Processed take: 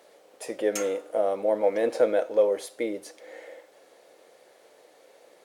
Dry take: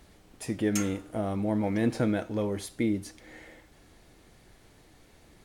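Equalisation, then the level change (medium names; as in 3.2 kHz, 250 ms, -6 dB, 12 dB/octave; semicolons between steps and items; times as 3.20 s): resonant high-pass 520 Hz, resonance Q 4.9; 0.0 dB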